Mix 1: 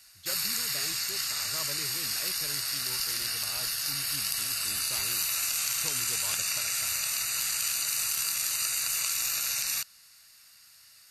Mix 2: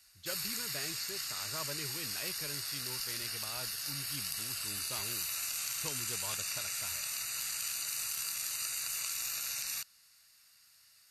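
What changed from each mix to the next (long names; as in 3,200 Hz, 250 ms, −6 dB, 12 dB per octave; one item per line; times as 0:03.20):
background −7.5 dB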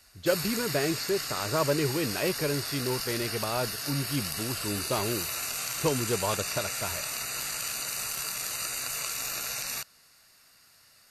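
background −3.0 dB
master: remove guitar amp tone stack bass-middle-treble 5-5-5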